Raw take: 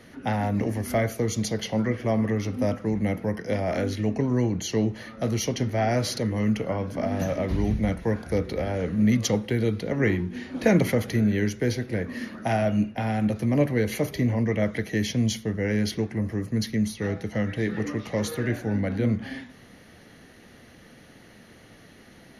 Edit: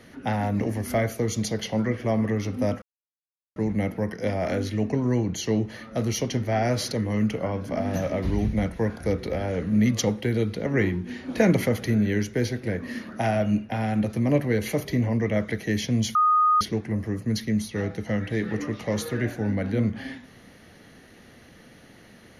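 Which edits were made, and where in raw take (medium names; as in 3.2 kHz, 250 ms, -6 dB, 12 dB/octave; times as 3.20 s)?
2.82 s: insert silence 0.74 s
15.41–15.87 s: bleep 1.24 kHz -16 dBFS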